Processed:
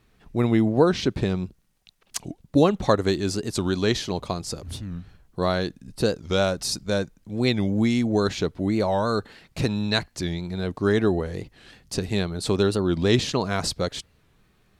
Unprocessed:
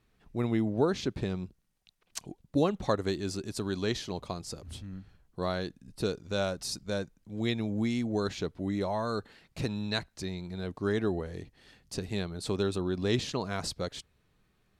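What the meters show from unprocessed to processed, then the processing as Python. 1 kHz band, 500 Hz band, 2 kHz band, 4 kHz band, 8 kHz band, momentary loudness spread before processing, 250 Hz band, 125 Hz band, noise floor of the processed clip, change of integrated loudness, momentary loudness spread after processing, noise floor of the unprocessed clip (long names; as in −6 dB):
+8.5 dB, +8.5 dB, +8.5 dB, +8.5 dB, +8.5 dB, 13 LU, +8.5 dB, +8.5 dB, −63 dBFS, +8.5 dB, 13 LU, −72 dBFS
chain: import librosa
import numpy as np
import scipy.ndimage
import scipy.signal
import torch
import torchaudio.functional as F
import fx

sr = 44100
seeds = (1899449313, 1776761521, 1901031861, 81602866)

y = fx.record_warp(x, sr, rpm=45.0, depth_cents=160.0)
y = F.gain(torch.from_numpy(y), 8.5).numpy()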